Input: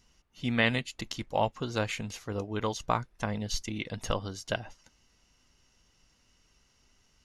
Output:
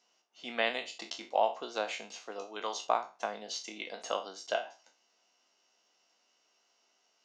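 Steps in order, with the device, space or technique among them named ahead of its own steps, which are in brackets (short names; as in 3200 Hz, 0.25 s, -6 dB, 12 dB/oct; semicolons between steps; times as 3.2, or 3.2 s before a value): spectral trails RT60 0.32 s; 2.31–2.85 tilt shelf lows -3.5 dB, about 1400 Hz; HPF 370 Hz 12 dB/oct; television speaker (speaker cabinet 200–6900 Hz, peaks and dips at 260 Hz -4 dB, 700 Hz +8 dB, 1900 Hz -4 dB); gain -4 dB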